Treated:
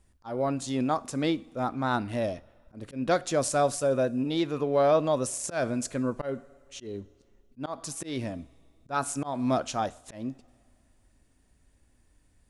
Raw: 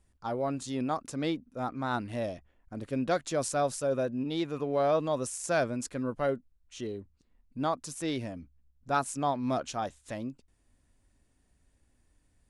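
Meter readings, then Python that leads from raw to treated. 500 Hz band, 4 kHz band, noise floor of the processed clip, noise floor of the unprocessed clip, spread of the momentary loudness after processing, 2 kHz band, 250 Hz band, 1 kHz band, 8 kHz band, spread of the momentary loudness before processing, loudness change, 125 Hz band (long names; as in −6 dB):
+3.0 dB, +3.0 dB, −65 dBFS, −70 dBFS, 15 LU, +1.5 dB, +3.0 dB, +2.0 dB, +4.0 dB, 11 LU, +3.0 dB, +3.0 dB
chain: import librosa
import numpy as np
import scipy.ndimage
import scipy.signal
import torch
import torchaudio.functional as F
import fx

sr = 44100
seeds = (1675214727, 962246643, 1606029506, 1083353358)

y = fx.rev_double_slope(x, sr, seeds[0], early_s=0.46, late_s=2.4, knee_db=-17, drr_db=16.5)
y = fx.auto_swell(y, sr, attack_ms=172.0)
y = y * librosa.db_to_amplitude(4.0)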